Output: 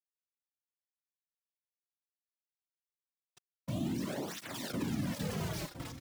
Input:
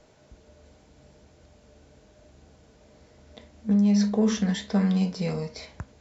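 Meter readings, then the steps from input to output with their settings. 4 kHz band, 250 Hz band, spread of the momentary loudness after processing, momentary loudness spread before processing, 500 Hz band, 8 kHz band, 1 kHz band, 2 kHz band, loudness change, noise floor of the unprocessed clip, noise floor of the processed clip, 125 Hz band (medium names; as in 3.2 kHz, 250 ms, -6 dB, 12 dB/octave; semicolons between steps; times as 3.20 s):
-6.5 dB, -15.0 dB, 5 LU, 16 LU, -11.0 dB, no reading, -6.0 dB, -5.0 dB, -13.0 dB, -57 dBFS, under -85 dBFS, -10.5 dB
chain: block-companded coder 3-bit; delay 607 ms -9 dB; bit crusher 5-bit; saturation -21.5 dBFS, distortion -12 dB; transient shaper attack 0 dB, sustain +4 dB; whisper effect; peak limiter -19 dBFS, peak gain reduction 5.5 dB; on a send: delay 1012 ms -10.5 dB; on the sum: cancelling through-zero flanger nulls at 0.34 Hz, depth 5.1 ms; trim -6 dB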